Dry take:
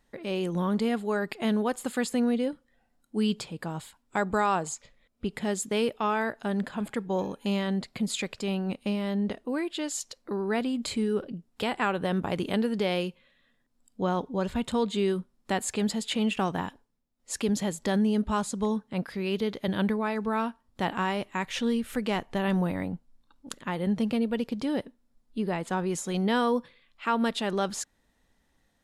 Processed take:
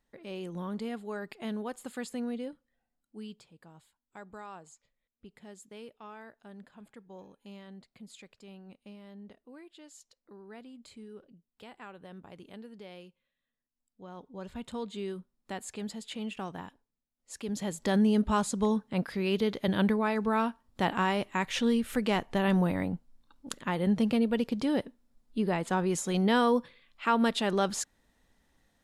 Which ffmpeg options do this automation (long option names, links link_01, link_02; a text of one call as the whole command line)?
ffmpeg -i in.wav -af "volume=11dB,afade=type=out:start_time=2.41:duration=1.01:silence=0.298538,afade=type=in:start_time=14.07:duration=0.57:silence=0.334965,afade=type=in:start_time=17.43:duration=0.59:silence=0.281838" out.wav